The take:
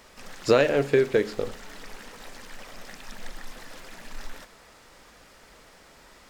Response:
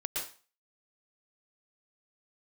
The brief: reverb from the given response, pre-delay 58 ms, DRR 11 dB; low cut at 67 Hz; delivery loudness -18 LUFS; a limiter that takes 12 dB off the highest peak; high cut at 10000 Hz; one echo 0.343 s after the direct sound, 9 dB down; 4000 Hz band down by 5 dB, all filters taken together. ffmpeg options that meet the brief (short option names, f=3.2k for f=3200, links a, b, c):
-filter_complex "[0:a]highpass=67,lowpass=10k,equalizer=f=4k:t=o:g=-6.5,alimiter=limit=-19dB:level=0:latency=1,aecho=1:1:343:0.355,asplit=2[a][b];[1:a]atrim=start_sample=2205,adelay=58[c];[b][c]afir=irnorm=-1:irlink=0,volume=-15dB[d];[a][d]amix=inputs=2:normalize=0,volume=16dB"